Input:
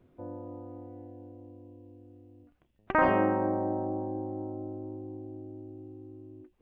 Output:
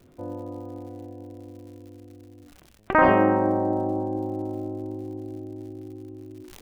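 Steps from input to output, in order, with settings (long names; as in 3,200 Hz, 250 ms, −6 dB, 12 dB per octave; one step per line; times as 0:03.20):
surface crackle 130 per second −51 dBFS
level that may fall only so fast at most 26 dB per second
level +6 dB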